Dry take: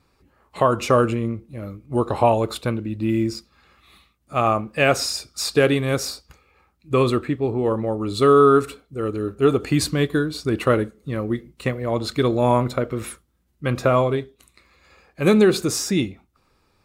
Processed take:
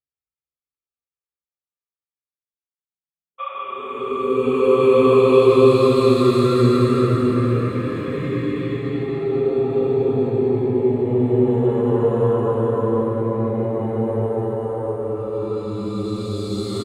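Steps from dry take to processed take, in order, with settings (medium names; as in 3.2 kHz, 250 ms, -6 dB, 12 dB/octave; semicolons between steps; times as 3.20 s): speakerphone echo 260 ms, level -15 dB; simulated room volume 33 m³, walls mixed, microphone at 1.1 m; gate -17 dBFS, range -51 dB; Paulstretch 10×, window 0.25 s, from 6.48 s; spectral replace 3.42–4.29 s, 520–3700 Hz after; trim -6 dB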